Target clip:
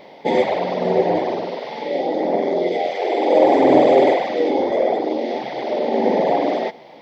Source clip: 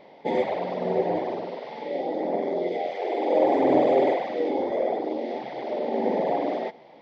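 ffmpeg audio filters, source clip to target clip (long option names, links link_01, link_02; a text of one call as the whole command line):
ffmpeg -i in.wav -af "highshelf=frequency=3800:gain=8.5,volume=7dB" out.wav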